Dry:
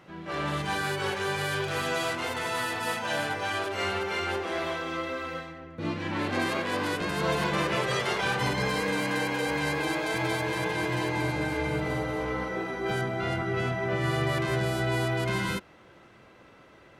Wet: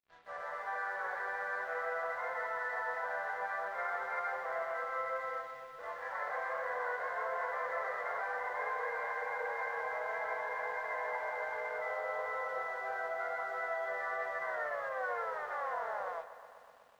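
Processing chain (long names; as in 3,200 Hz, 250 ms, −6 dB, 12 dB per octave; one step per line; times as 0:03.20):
turntable brake at the end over 2.58 s
Chebyshev band-pass filter 490–2,000 Hz, order 5
brickwall limiter −26 dBFS, peak gain reduction 8 dB
automatic gain control gain up to 5.5 dB
dead-zone distortion −50.5 dBFS
high-frequency loss of the air 65 metres
on a send at −7 dB: convolution reverb, pre-delay 3 ms
on the sum: feedback echo at a low word length 124 ms, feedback 80%, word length 9 bits, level −15 dB
level −7.5 dB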